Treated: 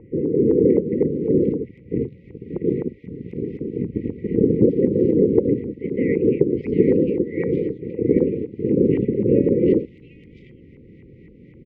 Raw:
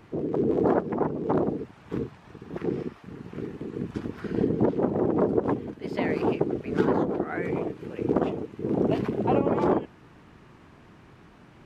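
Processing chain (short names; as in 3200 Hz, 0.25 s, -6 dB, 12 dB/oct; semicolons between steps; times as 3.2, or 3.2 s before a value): brick-wall FIR band-stop 550–1900 Hz; LFO low-pass saw up 3.9 Hz 890–1800 Hz; bands offset in time lows, highs 0.75 s, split 2700 Hz; gain +7 dB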